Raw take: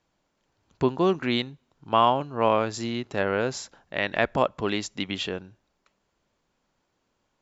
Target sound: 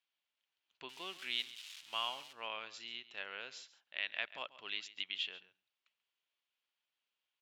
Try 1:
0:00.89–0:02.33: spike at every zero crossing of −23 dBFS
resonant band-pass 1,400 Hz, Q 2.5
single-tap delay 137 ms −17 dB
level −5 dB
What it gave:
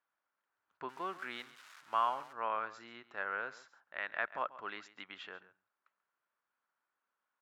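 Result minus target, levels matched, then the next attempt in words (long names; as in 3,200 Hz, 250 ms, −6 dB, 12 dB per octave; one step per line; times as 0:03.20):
4,000 Hz band −14.5 dB
0:00.89–0:02.33: spike at every zero crossing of −23 dBFS
resonant band-pass 3,000 Hz, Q 2.5
single-tap delay 137 ms −17 dB
level −5 dB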